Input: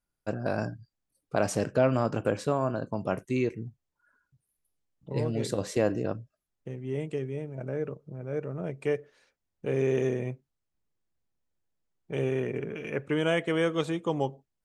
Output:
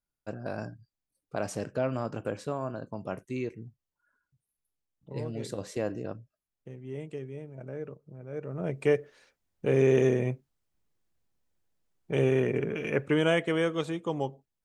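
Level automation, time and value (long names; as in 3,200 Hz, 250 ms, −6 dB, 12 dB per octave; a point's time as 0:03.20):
0:08.32 −6 dB
0:08.74 +4 dB
0:12.96 +4 dB
0:13.83 −2.5 dB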